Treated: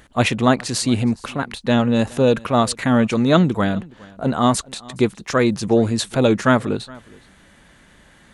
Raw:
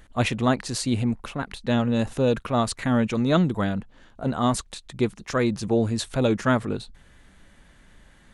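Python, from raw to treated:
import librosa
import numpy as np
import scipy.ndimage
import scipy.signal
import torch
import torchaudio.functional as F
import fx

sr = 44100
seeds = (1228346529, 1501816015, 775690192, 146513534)

p1 = fx.highpass(x, sr, hz=110.0, slope=6)
p2 = p1 + fx.echo_single(p1, sr, ms=417, db=-23.5, dry=0)
y = F.gain(torch.from_numpy(p2), 6.5).numpy()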